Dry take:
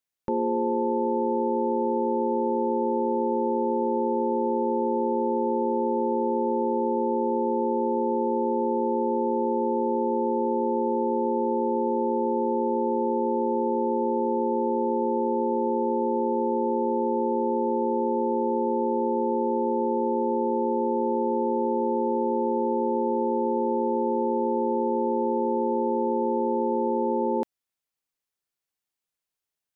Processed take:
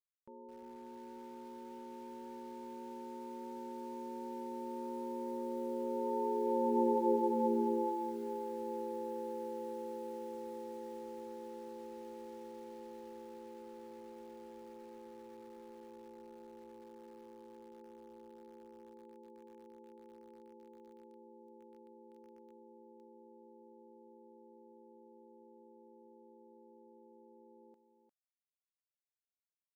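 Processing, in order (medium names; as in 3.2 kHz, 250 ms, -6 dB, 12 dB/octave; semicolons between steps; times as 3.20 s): Doppler pass-by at 6.91 s, 8 m/s, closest 4.6 m; delay 352 ms -8.5 dB; bit-crushed delay 213 ms, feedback 55%, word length 8-bit, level -9 dB; trim -6.5 dB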